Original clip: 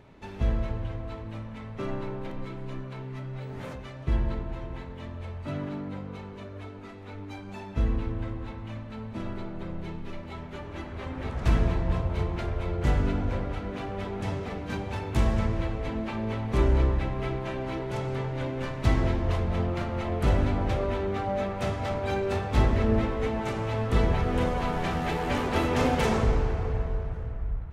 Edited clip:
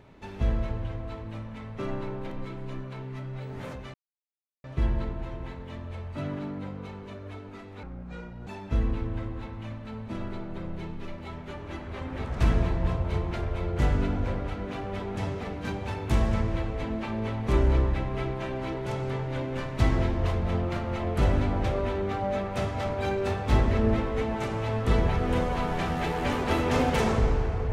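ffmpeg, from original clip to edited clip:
ffmpeg -i in.wav -filter_complex "[0:a]asplit=4[link_01][link_02][link_03][link_04];[link_01]atrim=end=3.94,asetpts=PTS-STARTPTS,afade=type=out:start_time=3.936:duration=0.004:curve=hsin,apad=pad_dur=0.7[link_05];[link_02]atrim=start=3.94:end=7.134,asetpts=PTS-STARTPTS,afade=type=in:duration=0.004:curve=hsin[link_06];[link_03]atrim=start=7.13:end=7.52,asetpts=PTS-STARTPTS,asetrate=26901,aresample=44100,atrim=end_sample=28195,asetpts=PTS-STARTPTS[link_07];[link_04]atrim=start=7.516[link_08];[link_05][link_06]concat=n=2:v=0:a=1[link_09];[link_09][link_07]acrossfade=duration=0.004:curve1=hsin:curve2=hsin[link_10];[link_10][link_08]acrossfade=duration=0.004:curve1=hsin:curve2=hsin" out.wav

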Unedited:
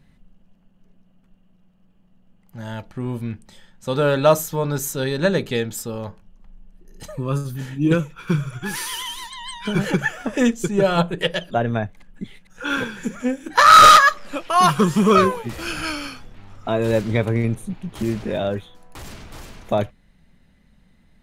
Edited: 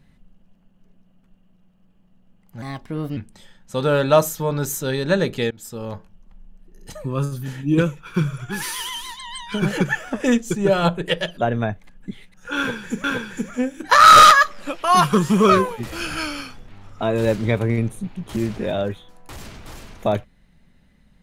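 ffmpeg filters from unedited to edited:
ffmpeg -i in.wav -filter_complex "[0:a]asplit=5[link_01][link_02][link_03][link_04][link_05];[link_01]atrim=end=2.624[link_06];[link_02]atrim=start=2.62:end=3.3,asetpts=PTS-STARTPTS,asetrate=54684,aresample=44100[link_07];[link_03]atrim=start=3.296:end=5.64,asetpts=PTS-STARTPTS,afade=type=out:start_time=2.34:duration=0.004:curve=hsin:silence=0.0749894[link_08];[link_04]atrim=start=5.64:end=13.172,asetpts=PTS-STARTPTS,afade=type=in:duration=0.37:silence=0.0749894[link_09];[link_05]atrim=start=12.698[link_10];[link_06][link_07]acrossfade=duration=0.004:curve1=hsin:curve2=hsin[link_11];[link_08][link_09]concat=n=2:v=0:a=1[link_12];[link_11][link_12]acrossfade=duration=0.004:curve1=hsin:curve2=hsin[link_13];[link_13][link_10]acrossfade=duration=0.004:curve1=hsin:curve2=hsin" out.wav

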